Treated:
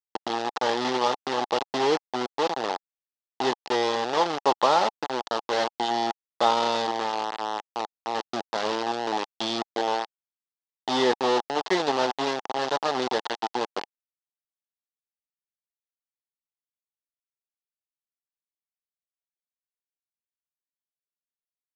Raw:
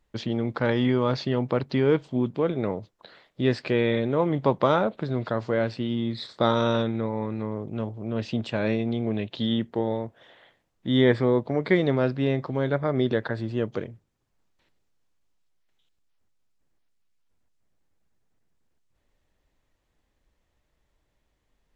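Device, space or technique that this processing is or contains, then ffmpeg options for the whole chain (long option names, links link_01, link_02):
hand-held game console: -af "acrusher=bits=3:mix=0:aa=0.000001,highpass=420,equalizer=frequency=570:width_type=q:width=4:gain=-4,equalizer=frequency=830:width_type=q:width=4:gain=9,equalizer=frequency=1500:width_type=q:width=4:gain=-5,equalizer=frequency=2300:width_type=q:width=4:gain=-9,lowpass=frequency=5300:width=0.5412,lowpass=frequency=5300:width=1.3066,volume=1dB"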